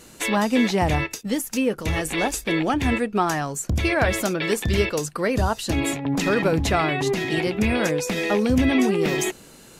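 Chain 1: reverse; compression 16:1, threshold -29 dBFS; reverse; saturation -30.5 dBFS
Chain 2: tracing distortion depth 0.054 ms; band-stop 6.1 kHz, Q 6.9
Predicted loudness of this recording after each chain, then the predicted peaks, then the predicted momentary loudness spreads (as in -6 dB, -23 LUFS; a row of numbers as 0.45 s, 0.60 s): -36.0 LUFS, -22.5 LUFS; -30.5 dBFS, -6.5 dBFS; 1 LU, 5 LU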